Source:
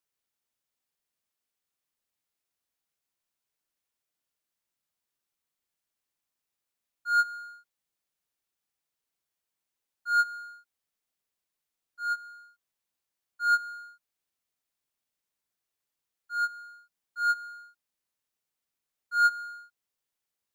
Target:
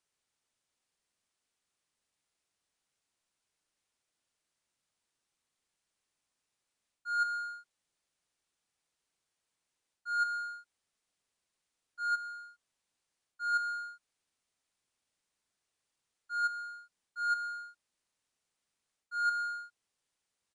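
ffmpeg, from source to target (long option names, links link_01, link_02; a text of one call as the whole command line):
ffmpeg -i in.wav -af "aresample=22050,aresample=44100,areverse,acompressor=threshold=-32dB:ratio=16,areverse,volume=4dB" out.wav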